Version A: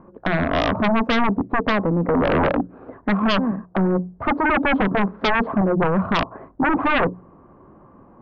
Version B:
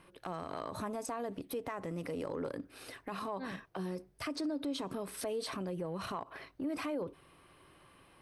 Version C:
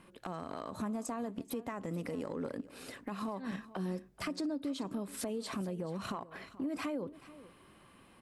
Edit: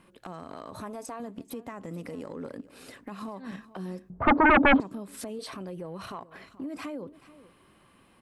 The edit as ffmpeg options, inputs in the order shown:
-filter_complex "[1:a]asplit=2[a][b];[2:a]asplit=4[c][d][e][f];[c]atrim=end=0.712[g];[a]atrim=start=0.708:end=1.202[h];[d]atrim=start=1.198:end=4.102[i];[0:a]atrim=start=4.098:end=4.802[j];[e]atrim=start=4.798:end=5.392[k];[b]atrim=start=5.388:end=6.212[l];[f]atrim=start=6.208[m];[g][h]acrossfade=d=0.004:c1=hsin:c2=hsin[n];[n][i]acrossfade=d=0.004:c1=hsin:c2=hsin[o];[o][j]acrossfade=d=0.004:c1=hsin:c2=hsin[p];[p][k]acrossfade=d=0.004:c1=hsin:c2=hsin[q];[q][l]acrossfade=d=0.004:c1=hsin:c2=hsin[r];[r][m]acrossfade=d=0.004:c1=hsin:c2=hsin"

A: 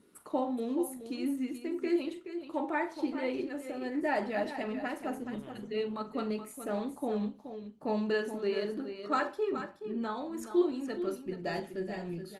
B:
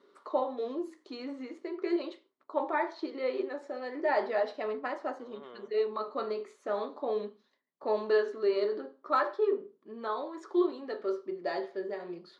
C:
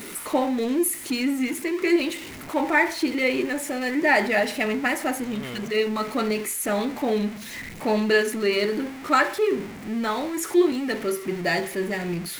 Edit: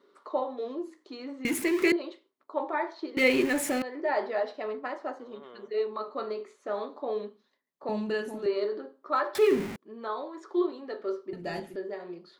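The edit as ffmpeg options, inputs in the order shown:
-filter_complex "[2:a]asplit=3[a][b][c];[0:a]asplit=2[d][e];[1:a]asplit=6[f][g][h][i][j][k];[f]atrim=end=1.452[l];[a]atrim=start=1.448:end=1.922[m];[g]atrim=start=1.918:end=3.172[n];[b]atrim=start=3.168:end=3.822[o];[h]atrim=start=3.818:end=7.892[p];[d]atrim=start=7.888:end=8.462[q];[i]atrim=start=8.458:end=9.352[r];[c]atrim=start=9.348:end=9.762[s];[j]atrim=start=9.758:end=11.332[t];[e]atrim=start=11.328:end=11.762[u];[k]atrim=start=11.758[v];[l][m]acrossfade=d=0.004:c1=hsin:c2=hsin[w];[w][n]acrossfade=d=0.004:c1=hsin:c2=hsin[x];[x][o]acrossfade=d=0.004:c1=hsin:c2=hsin[y];[y][p]acrossfade=d=0.004:c1=hsin:c2=hsin[z];[z][q]acrossfade=d=0.004:c1=hsin:c2=hsin[aa];[aa][r]acrossfade=d=0.004:c1=hsin:c2=hsin[ab];[ab][s]acrossfade=d=0.004:c1=hsin:c2=hsin[ac];[ac][t]acrossfade=d=0.004:c1=hsin:c2=hsin[ad];[ad][u]acrossfade=d=0.004:c1=hsin:c2=hsin[ae];[ae][v]acrossfade=d=0.004:c1=hsin:c2=hsin"

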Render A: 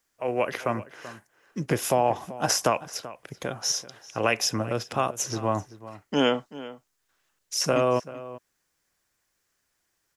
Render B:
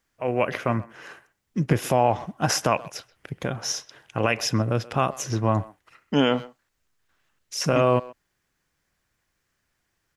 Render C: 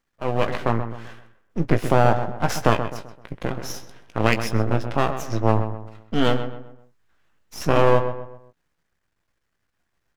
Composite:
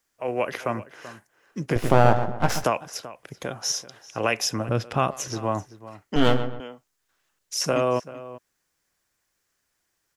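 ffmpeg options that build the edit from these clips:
-filter_complex "[2:a]asplit=2[a][b];[0:a]asplit=4[c][d][e][f];[c]atrim=end=1.762[g];[a]atrim=start=1.758:end=2.642[h];[d]atrim=start=2.638:end=4.692[i];[1:a]atrim=start=4.688:end=5.282[j];[e]atrim=start=5.278:end=6.162[k];[b]atrim=start=6.158:end=6.602[l];[f]atrim=start=6.598[m];[g][h]acrossfade=d=0.004:c1=hsin:c2=hsin[n];[n][i]acrossfade=d=0.004:c1=hsin:c2=hsin[o];[o][j]acrossfade=d=0.004:c1=hsin:c2=hsin[p];[p][k]acrossfade=d=0.004:c1=hsin:c2=hsin[q];[q][l]acrossfade=d=0.004:c1=hsin:c2=hsin[r];[r][m]acrossfade=d=0.004:c1=hsin:c2=hsin"

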